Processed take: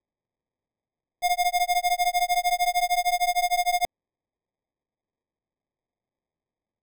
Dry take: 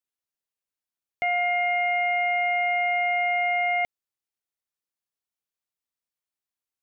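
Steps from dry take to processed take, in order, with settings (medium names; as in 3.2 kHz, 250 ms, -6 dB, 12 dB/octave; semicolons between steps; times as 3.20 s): sample-and-hold 31×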